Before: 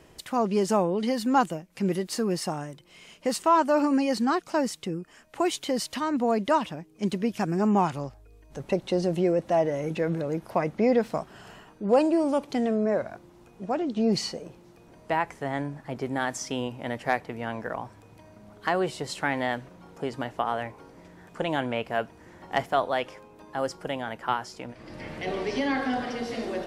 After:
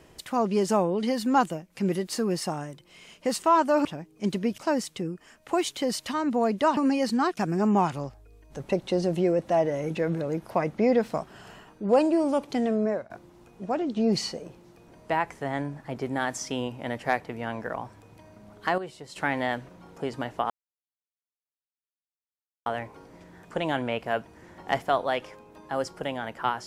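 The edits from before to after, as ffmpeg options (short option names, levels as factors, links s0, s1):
-filter_complex "[0:a]asplit=9[s0][s1][s2][s3][s4][s5][s6][s7][s8];[s0]atrim=end=3.852[s9];[s1]atrim=start=6.638:end=7.372[s10];[s2]atrim=start=4.448:end=6.642[s11];[s3]atrim=start=3.848:end=4.452[s12];[s4]atrim=start=7.368:end=13.1,asetpts=PTS-STARTPTS,afade=t=out:st=5.482:d=0.25:silence=0.0891251[s13];[s5]atrim=start=13.1:end=18.782,asetpts=PTS-STARTPTS,afade=t=in:d=0.004:c=hsin:silence=0.0891251[s14];[s6]atrim=start=18.778:end=19.162,asetpts=PTS-STARTPTS,volume=0.316[s15];[s7]atrim=start=19.158:end=20.5,asetpts=PTS-STARTPTS,afade=t=out:st=1.338:d=0.004:c=hsin,apad=pad_dur=2.16[s16];[s8]atrim=start=20.5,asetpts=PTS-STARTPTS,afade=t=in:d=0.004:c=hsin[s17];[s9][s10]acrossfade=d=0.004:c1=hsin:c2=hsin[s18];[s18][s11]acrossfade=d=0.004:c1=hsin:c2=hsin[s19];[s19][s12]acrossfade=d=0.004:c1=hsin:c2=hsin[s20];[s13][s14]concat=n=2:v=0:a=1[s21];[s20][s21]acrossfade=d=0.004:c1=hsin:c2=hsin[s22];[s22][s15]acrossfade=d=0.004:c1=hsin:c2=hsin[s23];[s16][s17]concat=n=2:v=0:a=1[s24];[s23][s24]acrossfade=d=0.004:c1=hsin:c2=hsin"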